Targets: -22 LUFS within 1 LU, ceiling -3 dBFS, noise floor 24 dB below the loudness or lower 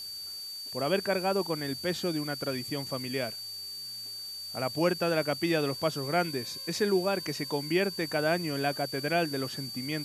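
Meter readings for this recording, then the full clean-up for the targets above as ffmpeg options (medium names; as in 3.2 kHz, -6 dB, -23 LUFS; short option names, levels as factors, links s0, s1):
steady tone 4.6 kHz; tone level -38 dBFS; noise floor -41 dBFS; noise floor target -55 dBFS; loudness -30.5 LUFS; peak level -13.5 dBFS; loudness target -22.0 LUFS
-> -af "bandreject=f=4600:w=30"
-af "afftdn=nr=14:nf=-41"
-af "volume=2.66"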